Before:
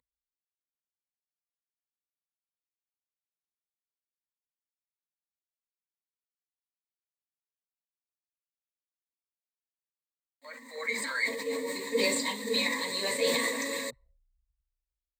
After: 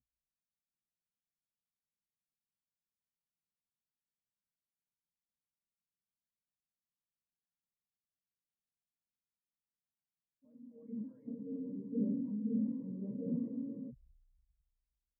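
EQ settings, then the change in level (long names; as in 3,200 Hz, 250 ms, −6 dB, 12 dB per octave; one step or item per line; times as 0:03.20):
transistor ladder low-pass 230 Hz, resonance 45%
+11.0 dB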